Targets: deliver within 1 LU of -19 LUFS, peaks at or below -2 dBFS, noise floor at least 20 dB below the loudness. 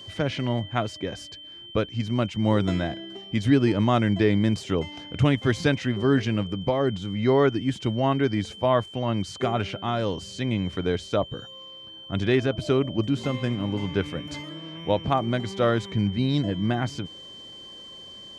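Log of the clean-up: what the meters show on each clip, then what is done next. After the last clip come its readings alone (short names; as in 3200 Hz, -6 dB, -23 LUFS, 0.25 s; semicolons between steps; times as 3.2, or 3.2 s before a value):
steady tone 3100 Hz; tone level -41 dBFS; loudness -25.5 LUFS; peak -7.5 dBFS; loudness target -19.0 LUFS
-> notch 3100 Hz, Q 30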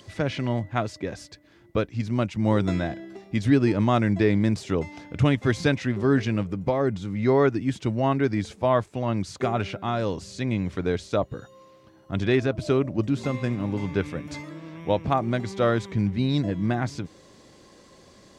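steady tone none; loudness -25.5 LUFS; peak -7.5 dBFS; loudness target -19.0 LUFS
-> gain +6.5 dB; limiter -2 dBFS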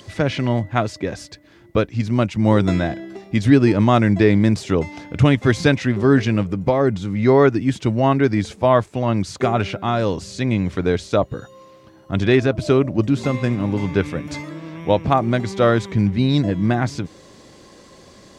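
loudness -19.0 LUFS; peak -2.0 dBFS; noise floor -47 dBFS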